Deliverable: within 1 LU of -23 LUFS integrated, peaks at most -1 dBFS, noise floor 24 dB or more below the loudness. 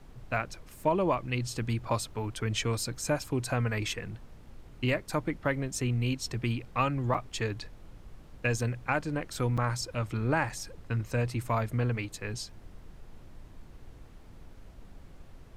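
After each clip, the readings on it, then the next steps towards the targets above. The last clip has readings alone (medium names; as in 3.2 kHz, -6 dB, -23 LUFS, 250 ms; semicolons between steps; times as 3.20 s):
dropouts 3; longest dropout 6.1 ms; noise floor -51 dBFS; noise floor target -56 dBFS; loudness -31.5 LUFS; peak level -13.5 dBFS; loudness target -23.0 LUFS
-> interpolate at 7.14/9.57/10.49 s, 6.1 ms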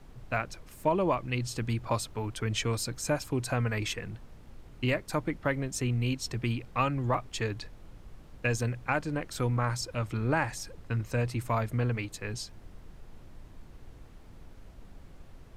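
dropouts 0; noise floor -51 dBFS; noise floor target -56 dBFS
-> noise print and reduce 6 dB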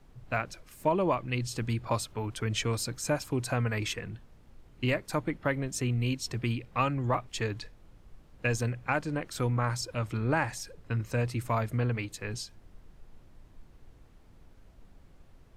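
noise floor -57 dBFS; loudness -31.5 LUFS; peak level -13.5 dBFS; loudness target -23.0 LUFS
-> trim +8.5 dB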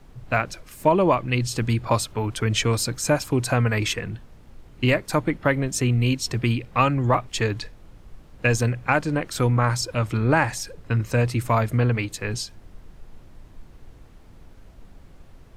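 loudness -23.0 LUFS; peak level -5.0 dBFS; noise floor -49 dBFS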